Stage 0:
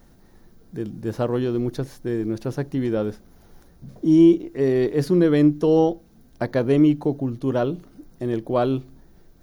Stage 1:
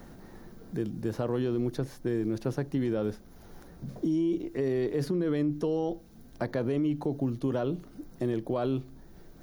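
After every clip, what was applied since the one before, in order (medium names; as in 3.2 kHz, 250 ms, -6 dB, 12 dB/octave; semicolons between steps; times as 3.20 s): peak limiter -18 dBFS, peak gain reduction 12 dB; three bands compressed up and down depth 40%; trim -3.5 dB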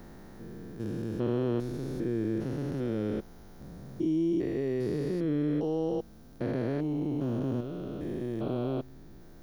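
spectrogram pixelated in time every 400 ms; trim +1.5 dB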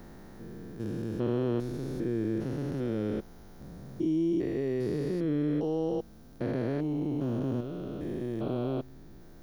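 no audible change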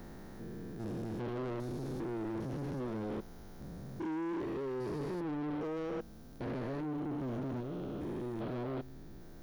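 saturation -35 dBFS, distortion -7 dB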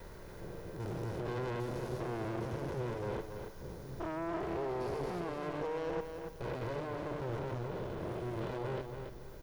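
comb filter that takes the minimum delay 2 ms; on a send: feedback delay 281 ms, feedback 31%, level -7 dB; on the sum: trim +2 dB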